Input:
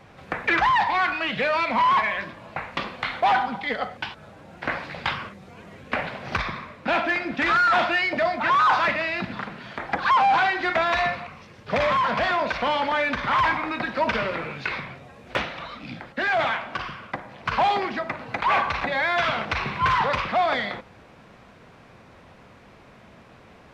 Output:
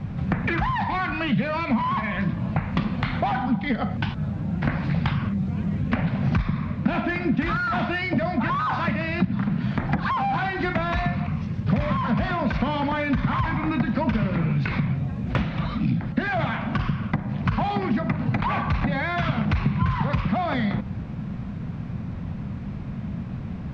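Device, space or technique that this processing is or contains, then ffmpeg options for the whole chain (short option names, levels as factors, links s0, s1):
jukebox: -af "lowpass=6200,lowshelf=f=280:t=q:w=1.5:g=13.5,acompressor=threshold=0.0447:ratio=6,tiltshelf=f=970:g=3.5,volume=1.68"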